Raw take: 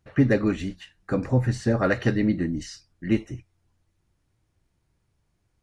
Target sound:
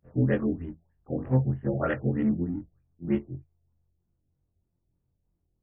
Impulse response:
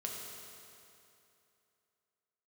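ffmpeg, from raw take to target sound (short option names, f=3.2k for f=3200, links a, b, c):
-af "afftfilt=real='re':imag='-im':win_size=2048:overlap=0.75,adynamicsmooth=sensitivity=3:basefreq=790,afftfilt=real='re*lt(b*sr/1024,750*pow(3500/750,0.5+0.5*sin(2*PI*3.2*pts/sr)))':imag='im*lt(b*sr/1024,750*pow(3500/750,0.5+0.5*sin(2*PI*3.2*pts/sr)))':win_size=1024:overlap=0.75"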